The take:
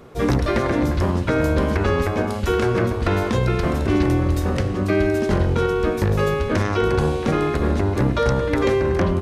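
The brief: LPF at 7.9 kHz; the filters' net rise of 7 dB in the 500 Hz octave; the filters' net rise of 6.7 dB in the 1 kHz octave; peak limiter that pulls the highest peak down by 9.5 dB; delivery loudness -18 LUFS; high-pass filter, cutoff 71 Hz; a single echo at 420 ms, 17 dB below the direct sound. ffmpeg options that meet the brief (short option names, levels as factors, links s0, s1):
-af "highpass=71,lowpass=7900,equalizer=f=500:t=o:g=7.5,equalizer=f=1000:t=o:g=6.5,alimiter=limit=0.266:level=0:latency=1,aecho=1:1:420:0.141,volume=1.26"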